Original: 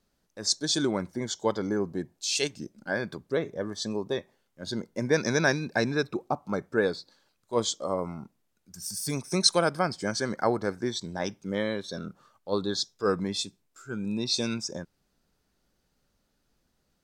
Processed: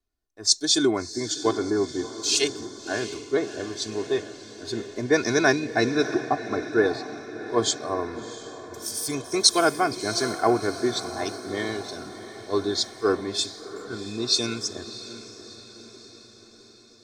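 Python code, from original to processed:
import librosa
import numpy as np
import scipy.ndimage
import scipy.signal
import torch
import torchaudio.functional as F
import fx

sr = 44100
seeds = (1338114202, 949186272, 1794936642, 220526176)

y = x + 0.82 * np.pad(x, (int(2.8 * sr / 1000.0), 0))[:len(x)]
y = fx.echo_diffused(y, sr, ms=679, feedback_pct=67, wet_db=-10)
y = fx.band_widen(y, sr, depth_pct=40)
y = F.gain(torch.from_numpy(y), 1.0).numpy()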